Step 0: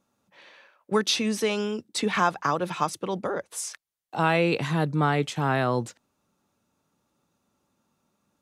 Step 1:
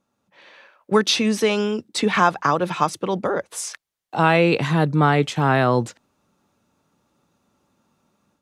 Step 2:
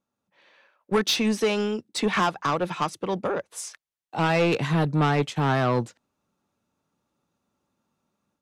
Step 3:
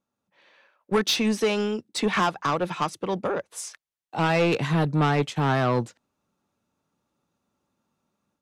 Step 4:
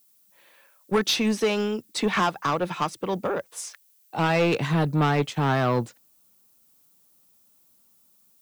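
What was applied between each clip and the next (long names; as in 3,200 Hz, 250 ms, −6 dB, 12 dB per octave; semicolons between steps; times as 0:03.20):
high-shelf EQ 6,700 Hz −6 dB; automatic gain control gain up to 7 dB
soft clipping −15 dBFS, distortion −11 dB; expander for the loud parts 1.5 to 1, over −38 dBFS
no processing that can be heard
background noise violet −61 dBFS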